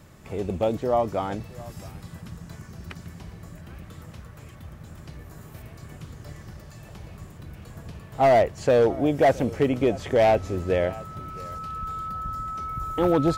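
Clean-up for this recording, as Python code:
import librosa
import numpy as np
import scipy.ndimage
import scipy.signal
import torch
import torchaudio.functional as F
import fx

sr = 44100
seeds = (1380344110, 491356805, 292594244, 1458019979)

y = fx.fix_declip(x, sr, threshold_db=-13.5)
y = fx.fix_declick_ar(y, sr, threshold=6.5)
y = fx.notch(y, sr, hz=1300.0, q=30.0)
y = fx.fix_echo_inverse(y, sr, delay_ms=668, level_db=-21.0)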